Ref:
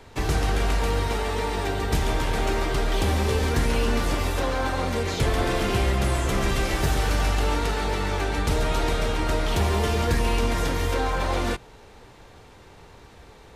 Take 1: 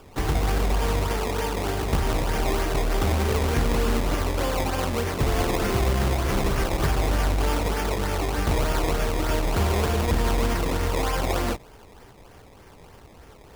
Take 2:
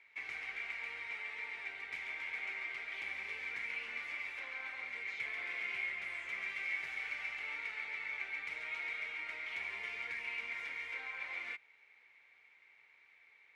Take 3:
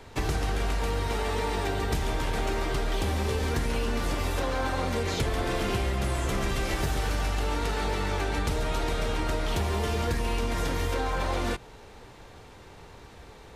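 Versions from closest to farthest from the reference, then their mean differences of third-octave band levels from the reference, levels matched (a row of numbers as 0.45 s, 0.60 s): 3, 1, 2; 1.5 dB, 3.0 dB, 15.0 dB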